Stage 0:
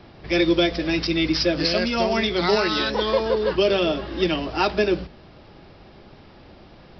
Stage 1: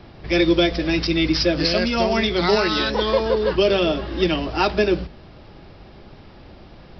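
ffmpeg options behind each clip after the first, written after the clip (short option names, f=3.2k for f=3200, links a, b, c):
-af "lowshelf=f=100:g=6,volume=1.5dB"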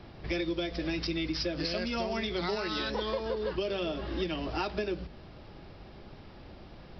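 -af "acompressor=threshold=-24dB:ratio=6,volume=-5.5dB"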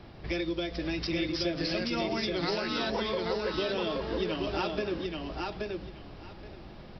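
-af "aecho=1:1:827|1654|2481:0.708|0.12|0.0205"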